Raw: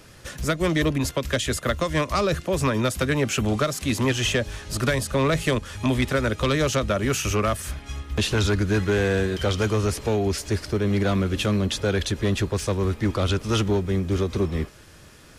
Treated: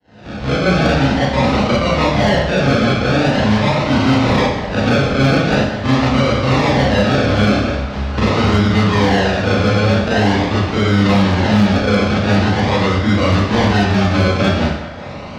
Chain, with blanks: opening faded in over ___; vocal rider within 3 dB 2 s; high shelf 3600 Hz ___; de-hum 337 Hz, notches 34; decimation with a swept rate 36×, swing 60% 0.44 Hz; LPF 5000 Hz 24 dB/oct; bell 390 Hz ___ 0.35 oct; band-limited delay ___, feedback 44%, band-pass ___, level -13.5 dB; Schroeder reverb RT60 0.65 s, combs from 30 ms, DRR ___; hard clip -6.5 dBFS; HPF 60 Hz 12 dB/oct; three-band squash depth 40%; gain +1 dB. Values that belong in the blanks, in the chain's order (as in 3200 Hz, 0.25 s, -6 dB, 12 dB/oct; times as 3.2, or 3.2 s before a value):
0.67 s, +6.5 dB, -8.5 dB, 0.192 s, 1100 Hz, -9 dB